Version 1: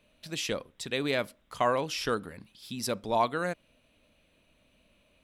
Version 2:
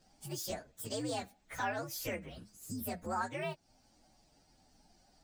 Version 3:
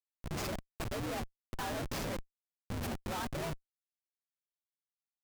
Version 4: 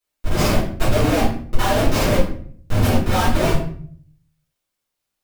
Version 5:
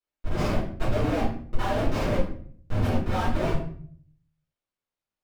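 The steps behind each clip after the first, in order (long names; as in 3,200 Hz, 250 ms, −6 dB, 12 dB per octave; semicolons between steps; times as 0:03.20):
partials spread apart or drawn together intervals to 128%; downward compressor 2 to 1, threshold −46 dBFS, peak gain reduction 12.5 dB; level +4 dB
comparator with hysteresis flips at −37.5 dBFS; level +5 dB
convolution reverb RT60 0.55 s, pre-delay 3 ms, DRR −12 dB; level +6 dB
low-pass filter 2,300 Hz 6 dB per octave; level −7.5 dB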